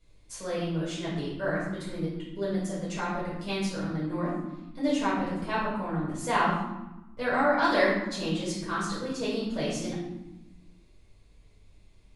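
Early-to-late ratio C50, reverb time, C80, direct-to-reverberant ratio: 1.0 dB, 1.1 s, 4.0 dB, −10.0 dB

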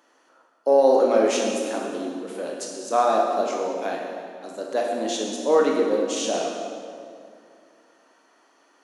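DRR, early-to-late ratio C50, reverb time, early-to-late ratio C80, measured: −1.0 dB, 1.0 dB, 2.3 s, 2.5 dB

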